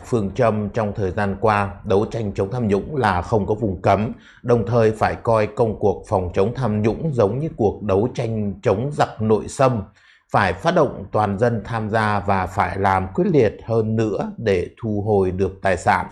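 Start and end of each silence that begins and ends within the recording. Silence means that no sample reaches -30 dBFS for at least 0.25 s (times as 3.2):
4.13–4.45
9.83–10.33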